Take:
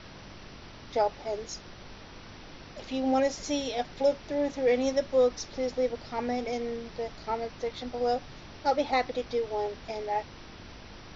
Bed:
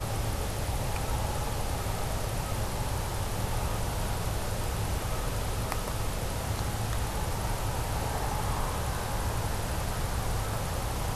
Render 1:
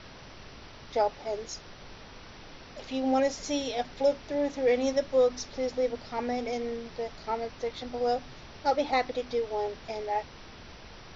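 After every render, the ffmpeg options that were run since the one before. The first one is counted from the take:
-af "bandreject=f=50:t=h:w=4,bandreject=f=100:t=h:w=4,bandreject=f=150:t=h:w=4,bandreject=f=200:t=h:w=4,bandreject=f=250:t=h:w=4,bandreject=f=300:t=h:w=4,bandreject=f=350:t=h:w=4"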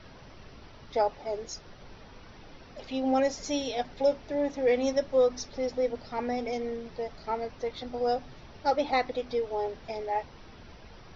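-af "afftdn=nr=7:nf=-48"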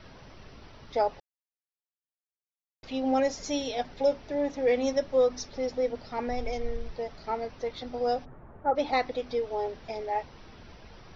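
-filter_complex "[0:a]asplit=3[s0][s1][s2];[s0]afade=t=out:st=6.28:d=0.02[s3];[s1]asubboost=boost=11.5:cutoff=58,afade=t=in:st=6.28:d=0.02,afade=t=out:st=6.91:d=0.02[s4];[s2]afade=t=in:st=6.91:d=0.02[s5];[s3][s4][s5]amix=inputs=3:normalize=0,asplit=3[s6][s7][s8];[s6]afade=t=out:st=8.24:d=0.02[s9];[s7]lowpass=f=1500:w=0.5412,lowpass=f=1500:w=1.3066,afade=t=in:st=8.24:d=0.02,afade=t=out:st=8.75:d=0.02[s10];[s8]afade=t=in:st=8.75:d=0.02[s11];[s9][s10][s11]amix=inputs=3:normalize=0,asplit=3[s12][s13][s14];[s12]atrim=end=1.2,asetpts=PTS-STARTPTS,afade=t=out:st=1.196:d=0.004:c=hsin[s15];[s13]atrim=start=1.2:end=2.83,asetpts=PTS-STARTPTS,volume=0[s16];[s14]atrim=start=2.83,asetpts=PTS-STARTPTS,afade=t=in:d=0.004:c=hsin[s17];[s15][s16][s17]concat=n=3:v=0:a=1"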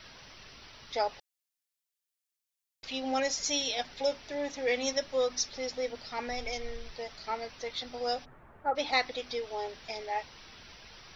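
-af "tiltshelf=f=1300:g=-8.5"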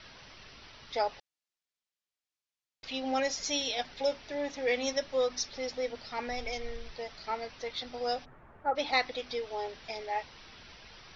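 -af "lowpass=5700"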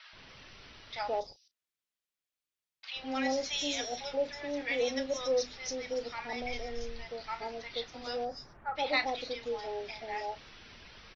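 -filter_complex "[0:a]asplit=2[s0][s1];[s1]adelay=34,volume=0.211[s2];[s0][s2]amix=inputs=2:normalize=0,acrossover=split=840|5500[s3][s4][s5];[s3]adelay=130[s6];[s5]adelay=280[s7];[s6][s4][s7]amix=inputs=3:normalize=0"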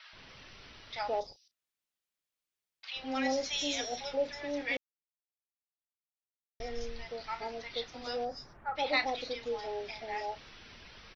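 -filter_complex "[0:a]asplit=3[s0][s1][s2];[s0]atrim=end=4.77,asetpts=PTS-STARTPTS,afade=t=out:st=4.766:d=0.004:c=hsin[s3];[s1]atrim=start=4.77:end=6.6,asetpts=PTS-STARTPTS,volume=0[s4];[s2]atrim=start=6.6,asetpts=PTS-STARTPTS,afade=t=in:d=0.004:c=hsin[s5];[s3][s4][s5]concat=n=3:v=0:a=1"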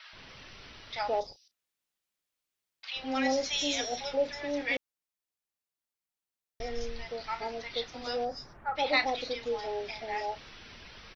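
-af "volume=1.41"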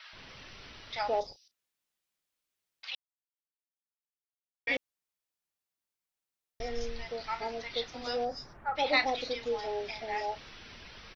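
-filter_complex "[0:a]asplit=3[s0][s1][s2];[s0]atrim=end=2.95,asetpts=PTS-STARTPTS,afade=t=out:st=2.946:d=0.004:c=hsin[s3];[s1]atrim=start=2.95:end=4.67,asetpts=PTS-STARTPTS,volume=0[s4];[s2]atrim=start=4.67,asetpts=PTS-STARTPTS,afade=t=in:d=0.004:c=hsin[s5];[s3][s4][s5]concat=n=3:v=0:a=1"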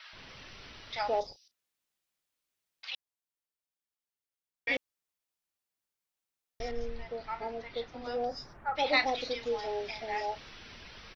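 -filter_complex "[0:a]asettb=1/sr,asplit=3[s0][s1][s2];[s0]atrim=end=6.714[s3];[s1]atrim=start=6.71:end=8.24,asetpts=PTS-STARTPTS,afade=t=in:d=0.004:c=qsin,afade=t=out:st=1.526:d=0.004:c=qsin,lowpass=f=1300:p=1[s4];[s2]atrim=start=8.236[s5];[s3][s4]acrossfade=d=0.004:c1=hsin:c2=qsin[s6];[s6][s5]acrossfade=d=0.004:c1=qsin:c2=hsin"

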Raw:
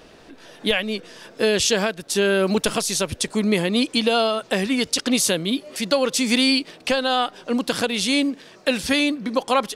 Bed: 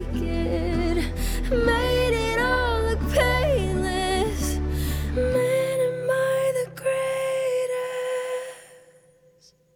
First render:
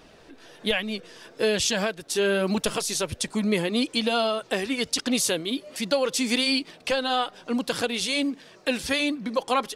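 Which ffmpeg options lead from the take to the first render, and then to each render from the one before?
-af "flanger=delay=0.8:depth=2.1:regen=-57:speed=1.2:shape=triangular"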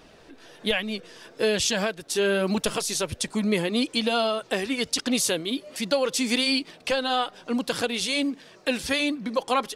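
-af anull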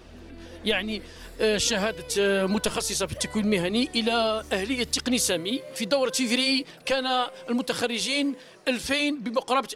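-filter_complex "[1:a]volume=0.1[s0];[0:a][s0]amix=inputs=2:normalize=0"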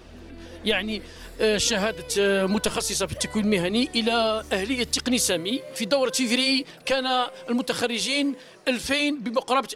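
-af "volume=1.19"

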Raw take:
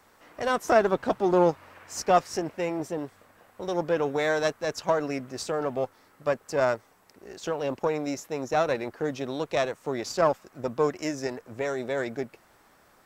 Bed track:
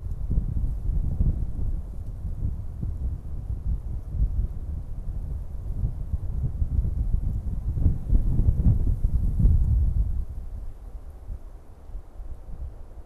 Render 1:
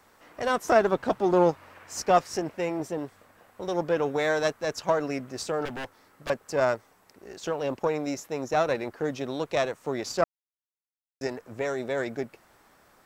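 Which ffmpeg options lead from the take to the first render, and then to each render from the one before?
-filter_complex "[0:a]asettb=1/sr,asplit=3[s0][s1][s2];[s0]atrim=end=5.654[s3];[s1]atrim=start=5.65:end=6.3,asetpts=PTS-STARTPTS,afade=t=in:d=0.004:c=qsin,afade=t=out:st=0.646:d=0.004:c=qsin,aeval=exprs='0.0335*(abs(mod(val(0)/0.0335+3,4)-2)-1)':c=same[s4];[s2]atrim=start=6.296[s5];[s3][s4]acrossfade=d=0.004:c1=hsin:c2=qsin[s6];[s6][s5]acrossfade=d=0.004:c1=qsin:c2=hsin,asplit=3[s7][s8][s9];[s7]atrim=end=10.24,asetpts=PTS-STARTPTS,afade=t=out:st=10.236:d=0.004:c=hsin[s10];[s8]atrim=start=10.24:end=11.21,asetpts=PTS-STARTPTS,volume=0[s11];[s9]atrim=start=11.21,asetpts=PTS-STARTPTS,afade=t=in:d=0.004:c=hsin[s12];[s10][s11][s12]concat=n=3:v=0:a=1"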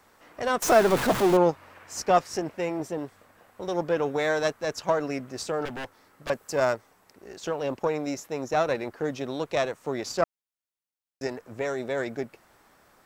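-filter_complex "[0:a]asettb=1/sr,asplit=3[s0][s1][s2];[s0]atrim=end=0.624[s3];[s1]atrim=start=0.62:end=1.37,asetpts=PTS-STARTPTS,afade=t=in:d=0.004:c=qsin,afade=t=out:st=0.746:d=0.004:c=qsin,aeval=exprs='val(0)+0.5*0.0668*sgn(val(0))':c=same[s4];[s2]atrim=start=1.366[s5];[s3][s4]acrossfade=d=0.004:c1=hsin:c2=qsin[s6];[s6][s5]acrossfade=d=0.004:c1=qsin:c2=hsin,asettb=1/sr,asplit=3[s7][s8][s9];[s7]atrim=end=6.334[s10];[s8]atrim=start=6.33:end=6.73,asetpts=PTS-STARTPTS,afade=t=in:d=0.004:c=qsin,afade=t=out:st=0.396:d=0.004:c=qsin,highshelf=f=6300:g=8[s11];[s9]atrim=start=6.726[s12];[s10][s11]acrossfade=d=0.004:c1=hsin:c2=qsin[s13];[s13][s12]acrossfade=d=0.004:c1=qsin:c2=hsin"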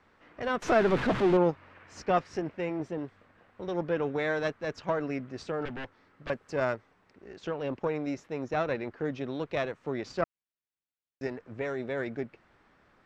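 -af "lowpass=2700,equalizer=f=770:t=o:w=1.8:g=-6.5"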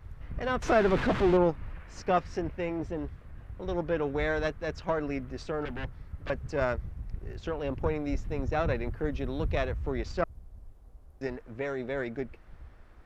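-filter_complex "[1:a]volume=0.224[s0];[0:a][s0]amix=inputs=2:normalize=0"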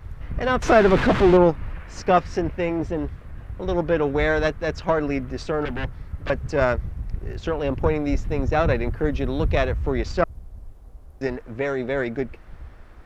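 -af "volume=2.66"

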